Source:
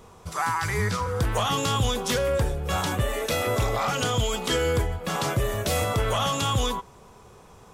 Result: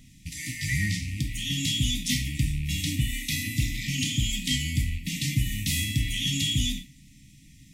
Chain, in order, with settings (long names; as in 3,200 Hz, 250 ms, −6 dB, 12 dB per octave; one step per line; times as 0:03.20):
loose part that buzzes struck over −35 dBFS, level −31 dBFS
brick-wall band-stop 320–1,800 Hz
0:01.02–0:01.64: downward compressor, threshold −26 dBFS, peak gain reduction 6.5 dB
reverb whose tail is shaped and stops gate 150 ms falling, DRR 4 dB